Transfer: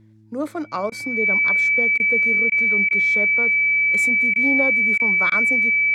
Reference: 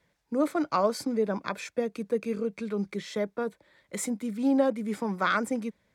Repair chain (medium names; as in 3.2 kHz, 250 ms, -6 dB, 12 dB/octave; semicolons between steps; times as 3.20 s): de-hum 108.6 Hz, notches 3; band-stop 2.3 kHz, Q 30; interpolate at 0.90/1.98/2.50/2.89/4.34/4.98/5.30 s, 17 ms